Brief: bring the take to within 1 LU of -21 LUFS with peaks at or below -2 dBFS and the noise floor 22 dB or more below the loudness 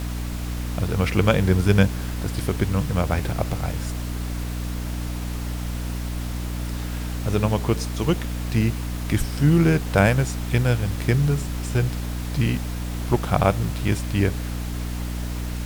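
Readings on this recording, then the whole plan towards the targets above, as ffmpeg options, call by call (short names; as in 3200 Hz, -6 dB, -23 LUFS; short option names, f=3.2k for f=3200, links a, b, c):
hum 60 Hz; harmonics up to 300 Hz; hum level -26 dBFS; noise floor -29 dBFS; noise floor target -46 dBFS; loudness -24.0 LUFS; peak -2.0 dBFS; loudness target -21.0 LUFS
-> -af "bandreject=f=60:t=h:w=6,bandreject=f=120:t=h:w=6,bandreject=f=180:t=h:w=6,bandreject=f=240:t=h:w=6,bandreject=f=300:t=h:w=6"
-af "afftdn=nr=17:nf=-29"
-af "volume=3dB,alimiter=limit=-2dB:level=0:latency=1"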